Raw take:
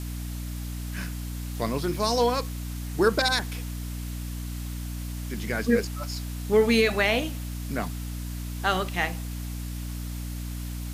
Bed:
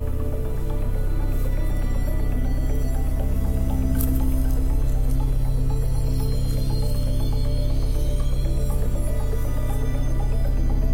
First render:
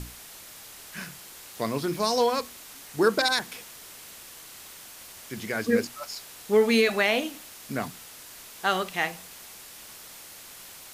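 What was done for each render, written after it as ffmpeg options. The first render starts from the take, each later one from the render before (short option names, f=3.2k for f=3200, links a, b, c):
-af "bandreject=f=60:t=h:w=6,bandreject=f=120:t=h:w=6,bandreject=f=180:t=h:w=6,bandreject=f=240:t=h:w=6,bandreject=f=300:t=h:w=6"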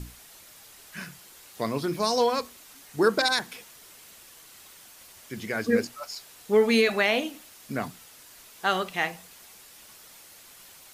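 -af "afftdn=nr=6:nf=-46"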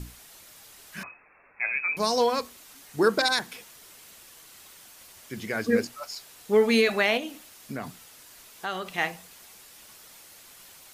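-filter_complex "[0:a]asettb=1/sr,asplit=3[a][b][c];[a]atrim=end=1.034[d];[b]atrim=start=1.03:end=1.97,asetpts=PTS-STARTPTS,afade=t=in:d=0.004:c=qsin,afade=t=out:st=0.936:d=0.004:c=qsin,lowpass=f=2.3k:t=q:w=0.5098,lowpass=f=2.3k:t=q:w=0.6013,lowpass=f=2.3k:t=q:w=0.9,lowpass=f=2.3k:t=q:w=2.563,afreqshift=-2700[e];[c]atrim=start=1.966[f];[d][e]acrossfade=d=0.004:c1=hsin:c2=qsin[g];[g][f]acrossfade=d=0.004:c1=qsin:c2=hsin,asettb=1/sr,asplit=3[h][i][j];[h]atrim=end=7.174[k];[i]atrim=start=7.17:end=8.98,asetpts=PTS-STARTPTS,afade=t=in:d=0.004:c=qsin,afade=t=out:st=1.806:d=0.004:c=qsin,acompressor=threshold=-32dB:ratio=2:attack=3.2:release=140:knee=1:detection=peak[l];[j]atrim=start=8.976[m];[k][l]acrossfade=d=0.004:c1=hsin:c2=qsin[n];[n][m]acrossfade=d=0.004:c1=qsin:c2=hsin"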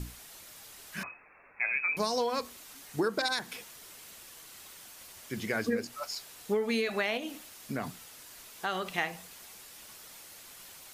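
-af "acompressor=threshold=-26dB:ratio=10"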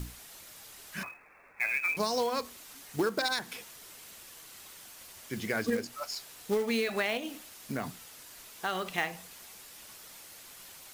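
-af "acrusher=bits=4:mode=log:mix=0:aa=0.000001"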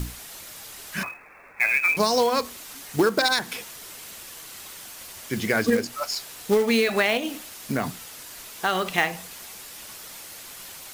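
-af "volume=9dB"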